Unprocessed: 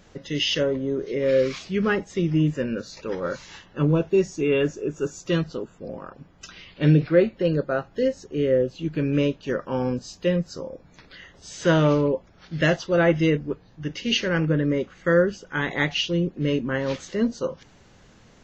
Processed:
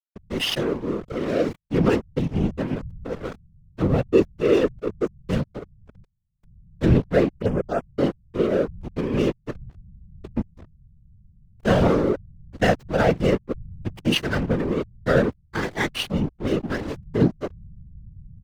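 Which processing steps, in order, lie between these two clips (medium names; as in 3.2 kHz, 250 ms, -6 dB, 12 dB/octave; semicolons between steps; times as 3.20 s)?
9.50–10.37 s: compression 4:1, threshold -33 dBFS, peak gain reduction 13.5 dB; comb 4.5 ms, depth 90%; hysteresis with a dead band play -18.5 dBFS; whisper effect; 7.38–7.87 s: touch-sensitive phaser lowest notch 570 Hz, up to 4.1 kHz, full sweep at -19.5 dBFS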